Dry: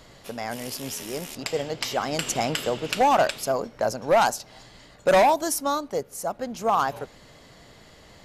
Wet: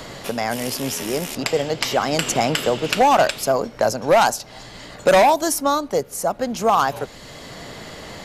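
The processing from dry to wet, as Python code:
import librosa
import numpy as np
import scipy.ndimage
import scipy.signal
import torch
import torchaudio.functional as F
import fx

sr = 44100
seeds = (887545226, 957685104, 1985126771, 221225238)

y = fx.band_squash(x, sr, depth_pct=40)
y = y * librosa.db_to_amplitude(6.0)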